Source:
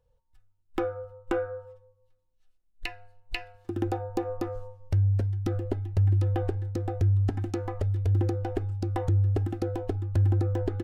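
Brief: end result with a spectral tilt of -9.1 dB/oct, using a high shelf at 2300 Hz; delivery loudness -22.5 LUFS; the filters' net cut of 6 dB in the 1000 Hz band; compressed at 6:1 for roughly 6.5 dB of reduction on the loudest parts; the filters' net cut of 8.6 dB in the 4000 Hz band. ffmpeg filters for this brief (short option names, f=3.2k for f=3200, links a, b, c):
-af "equalizer=f=1k:t=o:g=-8,highshelf=f=2.3k:g=-5.5,equalizer=f=4k:t=o:g=-6.5,acompressor=threshold=-27dB:ratio=6,volume=10.5dB"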